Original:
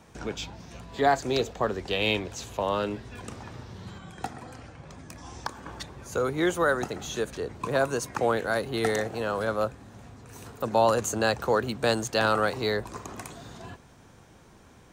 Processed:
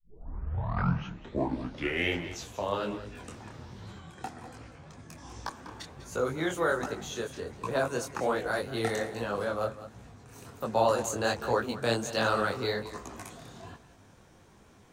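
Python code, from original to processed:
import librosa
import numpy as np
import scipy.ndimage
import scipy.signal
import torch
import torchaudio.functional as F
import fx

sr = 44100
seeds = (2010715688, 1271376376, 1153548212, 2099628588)

p1 = fx.tape_start_head(x, sr, length_s=2.48)
p2 = p1 + fx.echo_single(p1, sr, ms=197, db=-14.0, dry=0)
y = fx.detune_double(p2, sr, cents=45)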